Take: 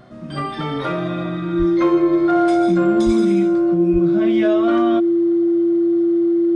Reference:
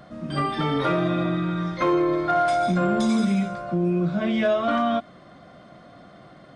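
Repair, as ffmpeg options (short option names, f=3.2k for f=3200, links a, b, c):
-filter_complex "[0:a]bandreject=f=124.8:t=h:w=4,bandreject=f=249.6:t=h:w=4,bandreject=f=374.4:t=h:w=4,bandreject=f=340:w=30,asplit=3[a][b][c];[a]afade=t=out:st=1.58:d=0.02[d];[b]highpass=f=140:w=0.5412,highpass=f=140:w=1.3066,afade=t=in:st=1.58:d=0.02,afade=t=out:st=1.7:d=0.02[e];[c]afade=t=in:st=1.7:d=0.02[f];[d][e][f]amix=inputs=3:normalize=0,asplit=3[g][h][i];[g]afade=t=out:st=3.05:d=0.02[j];[h]highpass=f=140:w=0.5412,highpass=f=140:w=1.3066,afade=t=in:st=3.05:d=0.02,afade=t=out:st=3.17:d=0.02[k];[i]afade=t=in:st=3.17:d=0.02[l];[j][k][l]amix=inputs=3:normalize=0,asplit=3[m][n][o];[m]afade=t=out:st=3.92:d=0.02[p];[n]highpass=f=140:w=0.5412,highpass=f=140:w=1.3066,afade=t=in:st=3.92:d=0.02,afade=t=out:st=4.04:d=0.02[q];[o]afade=t=in:st=4.04:d=0.02[r];[p][q][r]amix=inputs=3:normalize=0"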